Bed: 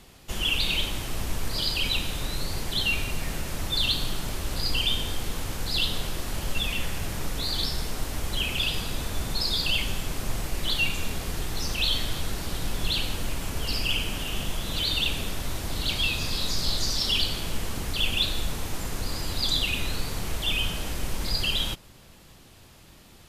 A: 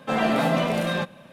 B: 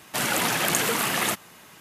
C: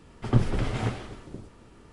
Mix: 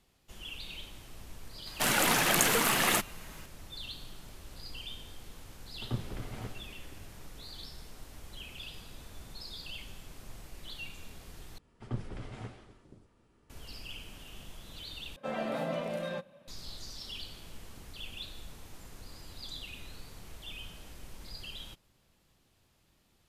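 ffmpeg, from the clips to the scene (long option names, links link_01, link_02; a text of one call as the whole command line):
ffmpeg -i bed.wav -i cue0.wav -i cue1.wav -i cue2.wav -filter_complex "[3:a]asplit=2[link_01][link_02];[0:a]volume=-18dB[link_03];[2:a]aeval=exprs='if(lt(val(0),0),0.708*val(0),val(0))':channel_layout=same[link_04];[1:a]equalizer=frequency=560:width=7:gain=11.5[link_05];[link_03]asplit=3[link_06][link_07][link_08];[link_06]atrim=end=11.584[link_09];[link_02]atrim=end=1.92,asetpts=PTS-STARTPTS,volume=-15dB[link_10];[link_07]atrim=start=13.496:end=15.164[link_11];[link_05]atrim=end=1.32,asetpts=PTS-STARTPTS,volume=-14.5dB[link_12];[link_08]atrim=start=16.476[link_13];[link_04]atrim=end=1.8,asetpts=PTS-STARTPTS,volume=-1dB,afade=type=in:duration=0.004:curve=hsin,afade=type=out:start_time=1.796:duration=0.004:curve=hsin,adelay=1660[link_14];[link_01]atrim=end=1.92,asetpts=PTS-STARTPTS,volume=-13.5dB,afade=type=in:duration=0.004:curve=hsin,afade=type=out:start_time=1.916:duration=0.004:curve=hsin,adelay=5580[link_15];[link_09][link_10]acrossfade=duration=0.004:curve1=hsin:curve2=hsin[link_16];[link_16][link_11]acrossfade=duration=0.004:curve1=hsin:curve2=hsin[link_17];[link_17][link_12]acrossfade=duration=0.004:curve1=hsin:curve2=hsin[link_18];[link_18][link_13]acrossfade=duration=0.004:curve1=hsin:curve2=hsin[link_19];[link_19][link_14][link_15]amix=inputs=3:normalize=0" out.wav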